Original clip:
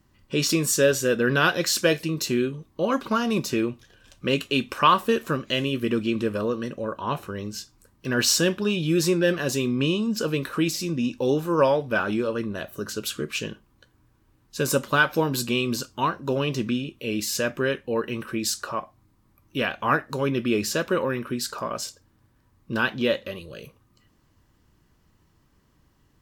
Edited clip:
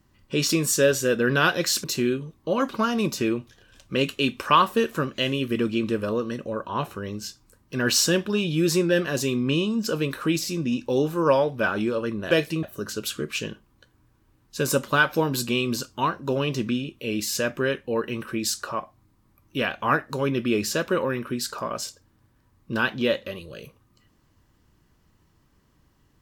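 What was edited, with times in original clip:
1.84–2.16 move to 12.63

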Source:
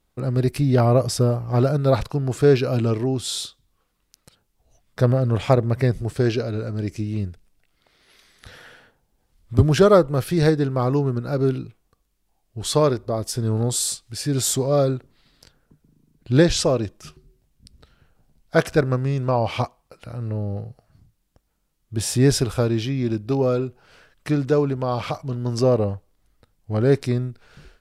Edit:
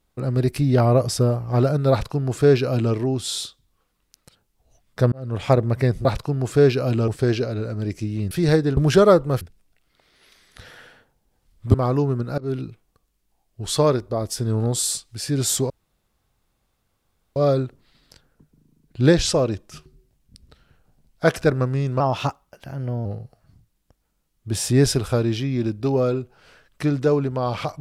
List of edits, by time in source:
1.91–2.94 copy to 6.05
5.12–5.52 fade in
7.28–9.61 swap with 10.25–10.71
11.35–11.6 fade in, from -22 dB
14.67 insert room tone 1.66 s
19.31–20.51 speed 114%

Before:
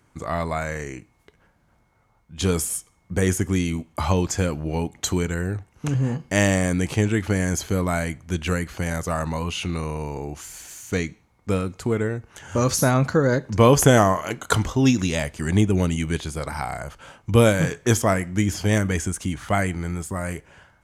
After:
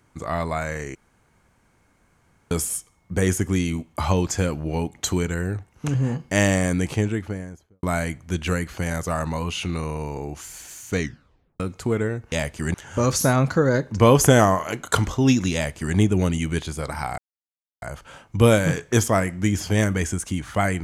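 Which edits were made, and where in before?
0.95–2.51 room tone
6.72–7.83 studio fade out
11 tape stop 0.60 s
15.12–15.54 copy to 12.32
16.76 insert silence 0.64 s

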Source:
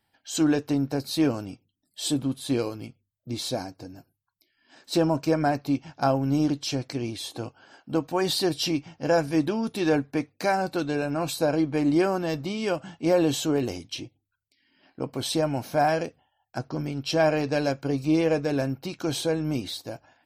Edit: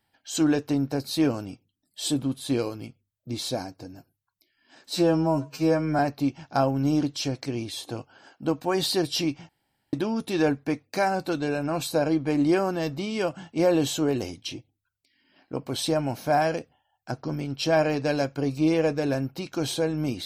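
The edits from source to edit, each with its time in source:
4.93–5.46 stretch 2×
8.96–9.4 room tone

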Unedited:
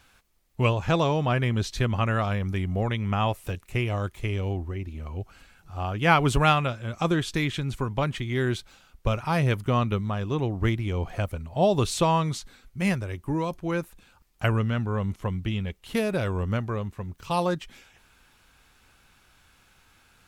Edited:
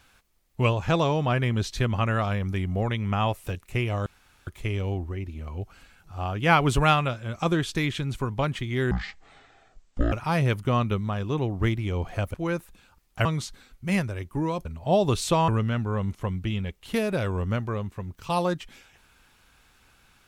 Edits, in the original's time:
4.06 insert room tone 0.41 s
8.5–9.13 speed 52%
11.35–12.18 swap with 13.58–14.49

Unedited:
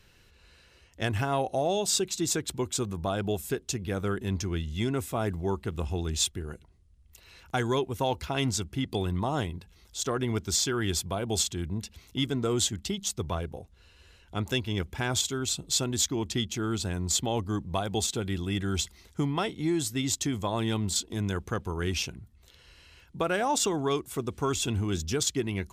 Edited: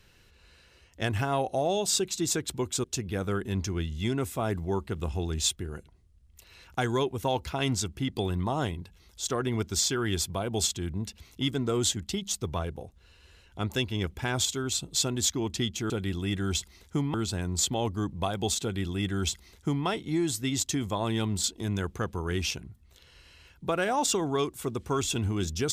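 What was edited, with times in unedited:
2.84–3.6 cut
18.14–19.38 copy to 16.66

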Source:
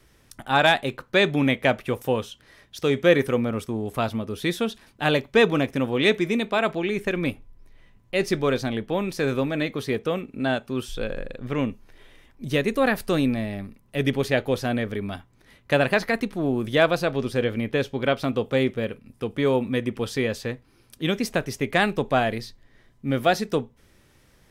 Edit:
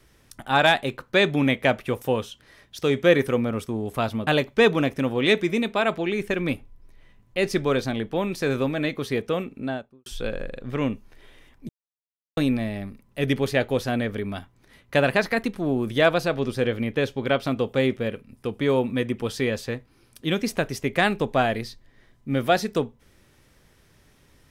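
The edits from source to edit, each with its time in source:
4.27–5.04 cut
10.22–10.83 studio fade out
12.46–13.14 mute

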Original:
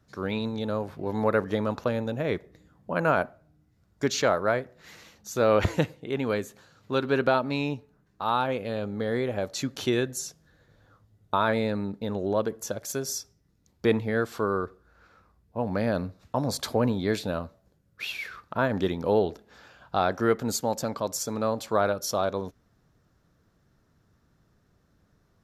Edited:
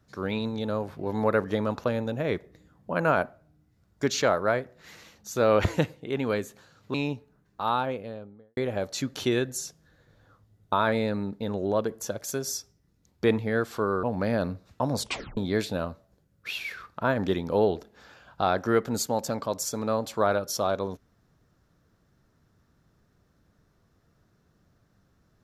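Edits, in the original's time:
6.94–7.55 cut
8.22–9.18 studio fade out
14.64–15.57 cut
16.53 tape stop 0.38 s

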